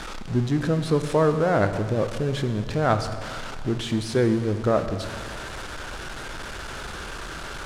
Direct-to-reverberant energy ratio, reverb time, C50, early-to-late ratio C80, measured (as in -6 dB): 8.0 dB, 2.1 s, 9.5 dB, 10.5 dB